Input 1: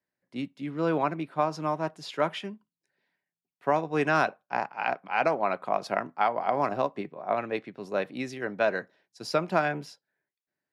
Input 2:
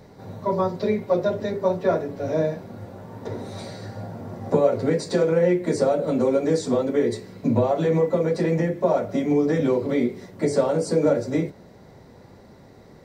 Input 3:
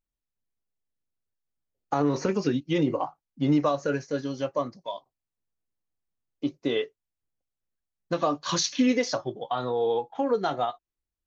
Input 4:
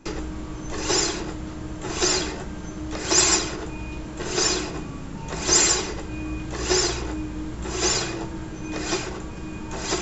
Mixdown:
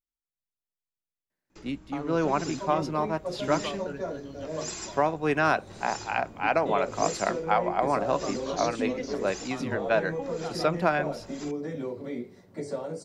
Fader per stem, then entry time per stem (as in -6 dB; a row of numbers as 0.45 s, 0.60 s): +0.5 dB, -13.0 dB, -11.5 dB, -19.0 dB; 1.30 s, 2.15 s, 0.00 s, 1.50 s